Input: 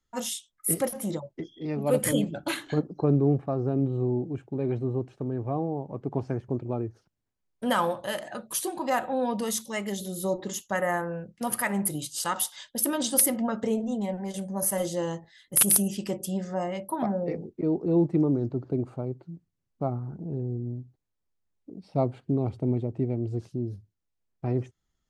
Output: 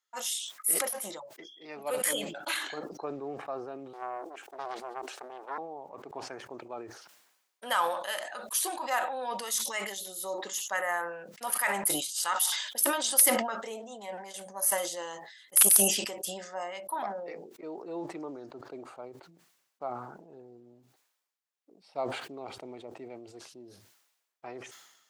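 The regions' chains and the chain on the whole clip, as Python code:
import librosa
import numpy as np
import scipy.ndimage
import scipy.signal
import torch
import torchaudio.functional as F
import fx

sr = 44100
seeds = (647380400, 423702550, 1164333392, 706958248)

y = fx.chain(x, sr, fx.highpass(hz=300.0, slope=24),
    fx.high_shelf(hz=6100.0, db=9.0),
    fx.doppler_dist(depth_ms=0.86), at=(3.93, 5.58))
y = scipy.signal.sosfilt(scipy.signal.butter(2, 860.0, 'highpass', fs=sr, output='sos'), y)
y = fx.sustainer(y, sr, db_per_s=56.0)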